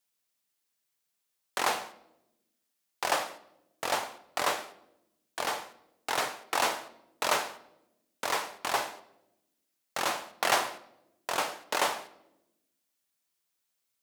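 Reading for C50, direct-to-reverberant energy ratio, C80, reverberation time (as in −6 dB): 16.0 dB, 11.0 dB, 19.0 dB, 0.95 s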